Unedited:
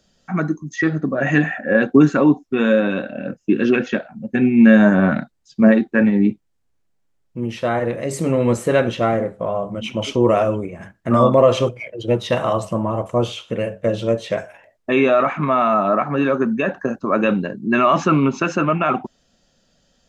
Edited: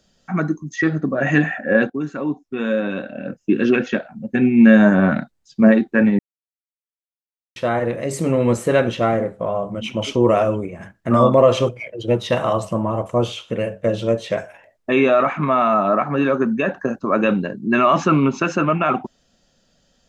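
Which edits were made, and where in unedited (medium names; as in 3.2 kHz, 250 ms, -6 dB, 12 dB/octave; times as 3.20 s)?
1.90–3.62 s: fade in, from -16 dB
6.19–7.56 s: mute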